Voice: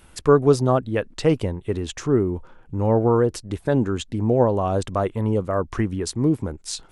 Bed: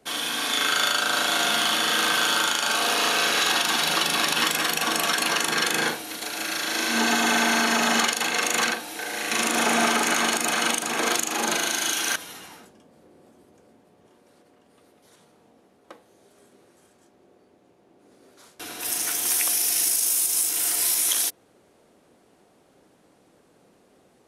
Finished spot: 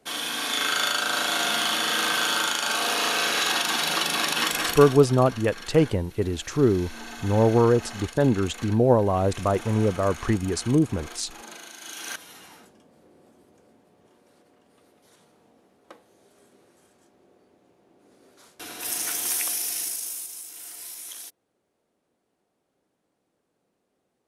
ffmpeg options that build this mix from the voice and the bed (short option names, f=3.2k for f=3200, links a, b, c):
-filter_complex "[0:a]adelay=4500,volume=-0.5dB[a];[1:a]volume=14dB,afade=t=out:st=4.66:d=0.34:silence=0.158489,afade=t=in:st=11.79:d=0.95:silence=0.158489,afade=t=out:st=19.15:d=1.23:silence=0.188365[b];[a][b]amix=inputs=2:normalize=0"